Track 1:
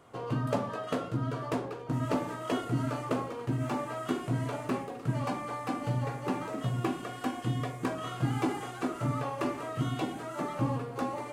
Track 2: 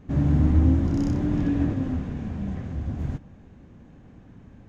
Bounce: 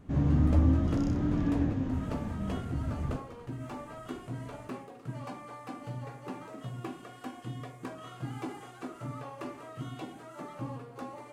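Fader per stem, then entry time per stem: −8.5, −5.0 decibels; 0.00, 0.00 seconds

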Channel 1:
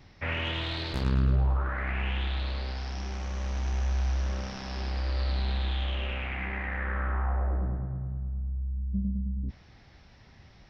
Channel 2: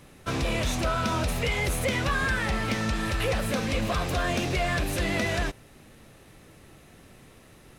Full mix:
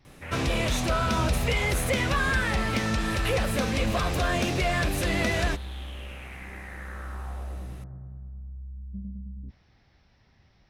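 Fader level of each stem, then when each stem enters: −7.5, +1.0 decibels; 0.00, 0.05 seconds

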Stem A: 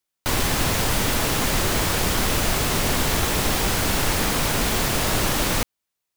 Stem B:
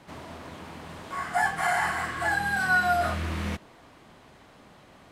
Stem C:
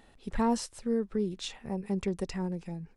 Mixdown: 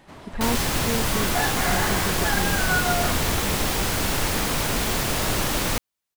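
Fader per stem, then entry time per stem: −2.0, −1.5, +0.5 decibels; 0.15, 0.00, 0.00 seconds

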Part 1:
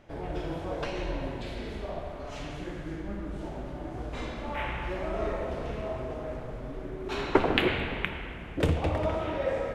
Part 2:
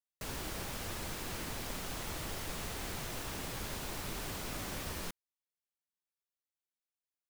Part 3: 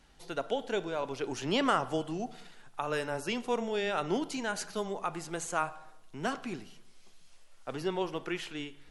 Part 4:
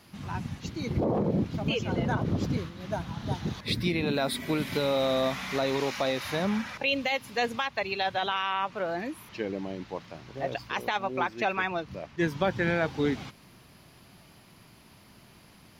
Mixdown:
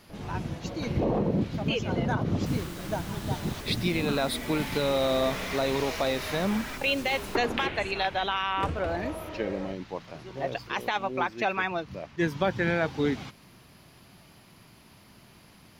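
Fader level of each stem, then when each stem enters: −7.5, −2.5, −14.5, +0.5 decibels; 0.00, 2.25, 2.40, 0.00 seconds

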